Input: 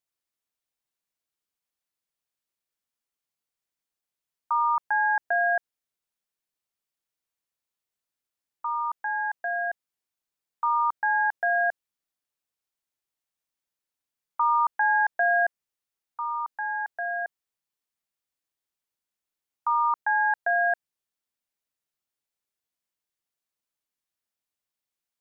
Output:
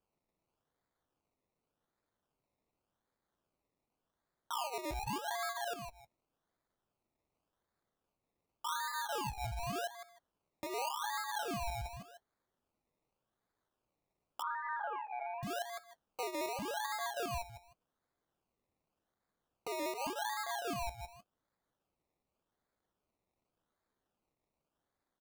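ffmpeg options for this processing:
-filter_complex "[0:a]asplit=2[a][b];[b]adelay=156,lowpass=f=1.8k:p=1,volume=-4dB,asplit=2[c][d];[d]adelay=156,lowpass=f=1.8k:p=1,volume=0.2,asplit=2[e][f];[f]adelay=156,lowpass=f=1.8k:p=1,volume=0.2[g];[a][c][e][g]amix=inputs=4:normalize=0,acompressor=threshold=-33dB:ratio=8,alimiter=level_in=9dB:limit=-24dB:level=0:latency=1:release=15,volume=-9dB,flanger=delay=3.5:depth=9:regen=-38:speed=0.21:shape=triangular,acrusher=samples=22:mix=1:aa=0.000001:lfo=1:lforange=13.2:lforate=0.87,asettb=1/sr,asplit=3[h][i][j];[h]atrim=end=14.424[k];[i]atrim=start=14.42:end=15.43,asetpts=PTS-STARTPTS,afade=t=in:d=0.004:c=qsin,afade=t=out:st=1.006:d=0.004:c=qsin,asuperpass=centerf=1000:order=12:qfactor=0.52[l];[j]atrim=start=15.426[m];[k][l]acrossfade=d=0.004:c1=hsin:c2=qsin[n];[n][m]acrossfade=d=0.004:c1=qsin:c2=hsin,volume=4.5dB"

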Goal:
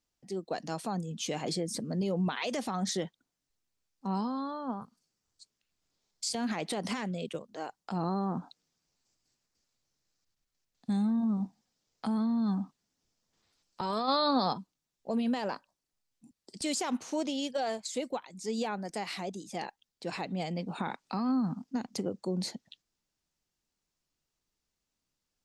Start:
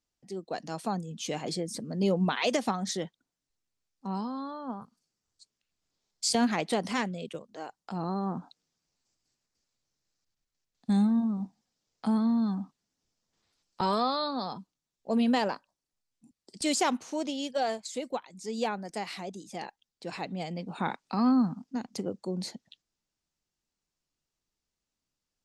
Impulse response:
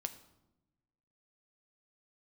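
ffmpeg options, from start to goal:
-filter_complex "[0:a]alimiter=level_in=1dB:limit=-24dB:level=0:latency=1:release=67,volume=-1dB,asplit=3[a][b][c];[a]afade=t=out:st=14.07:d=0.02[d];[b]acontrast=36,afade=t=in:st=14.07:d=0.02,afade=t=out:st=14.52:d=0.02[e];[c]afade=t=in:st=14.52:d=0.02[f];[d][e][f]amix=inputs=3:normalize=0,volume=1.5dB"

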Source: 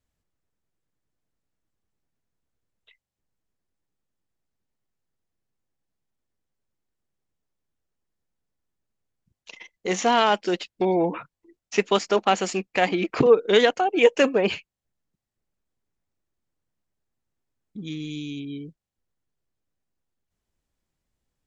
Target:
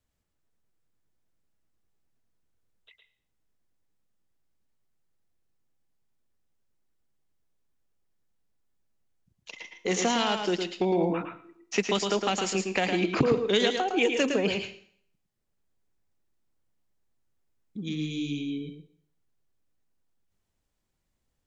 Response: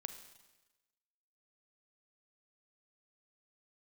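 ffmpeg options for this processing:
-filter_complex "[0:a]acrossover=split=250|3000[a][b][c];[b]acompressor=threshold=-26dB:ratio=6[d];[a][d][c]amix=inputs=3:normalize=0,asplit=2[e][f];[1:a]atrim=start_sample=2205,asetrate=83790,aresample=44100,adelay=110[g];[f][g]afir=irnorm=-1:irlink=0,volume=3.5dB[h];[e][h]amix=inputs=2:normalize=0"

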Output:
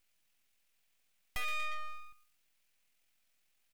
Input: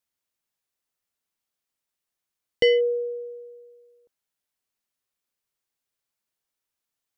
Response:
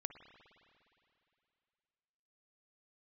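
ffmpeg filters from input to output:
-filter_complex "[0:a]aecho=1:1:225|450|675:0.112|0.0381|0.013,aeval=exprs='(tanh(63.1*val(0)+0.15)-tanh(0.15))/63.1':c=same,acrossover=split=230|890|2600[a][b][c][d];[a]acompressor=threshold=-57dB:ratio=4[e];[b]acompressor=threshold=-43dB:ratio=4[f];[c]acompressor=threshold=-49dB:ratio=4[g];[d]acompressor=threshold=-60dB:ratio=4[h];[e][f][g][h]amix=inputs=4:normalize=0,highshelf=f=3.2k:g=7.5,bandreject=f=380:w=12,asetrate=56448,aresample=44100,aeval=exprs='abs(val(0))':c=same,atempo=1.5,equalizer=f=400:t=o:w=0.67:g=-4,equalizer=f=1k:t=o:w=0.67:g=-4,equalizer=f=2.5k:t=o:w=0.67:g=7,volume=6.5dB"

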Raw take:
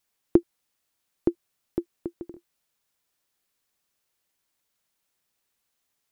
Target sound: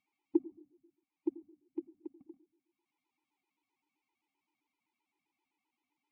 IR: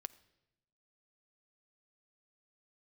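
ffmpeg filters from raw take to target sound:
-filter_complex "[0:a]asplit=2[a][b];[b]acompressor=mode=upward:threshold=-34dB:ratio=2.5,volume=-2.5dB[c];[a][c]amix=inputs=2:normalize=0,asplit=3[d][e][f];[d]bandpass=f=300:t=q:w=8,volume=0dB[g];[e]bandpass=f=870:t=q:w=8,volume=-6dB[h];[f]bandpass=f=2.24k:t=q:w=8,volume=-9dB[i];[g][h][i]amix=inputs=3:normalize=0,equalizer=f=1.1k:w=1.5:g=2[j];[1:a]atrim=start_sample=2205[k];[j][k]afir=irnorm=-1:irlink=0,afftfilt=real='re*gt(sin(2*PI*7.7*pts/sr)*(1-2*mod(floor(b*sr/1024/260),2)),0)':imag='im*gt(sin(2*PI*7.7*pts/sr)*(1-2*mod(floor(b*sr/1024/260),2)),0)':win_size=1024:overlap=0.75,volume=-3dB"

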